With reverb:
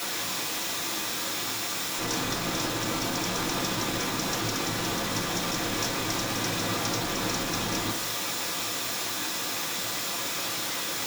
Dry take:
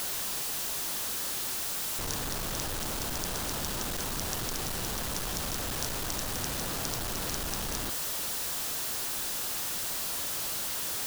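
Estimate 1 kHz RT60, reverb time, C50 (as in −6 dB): 0.35 s, 0.40 s, 11.5 dB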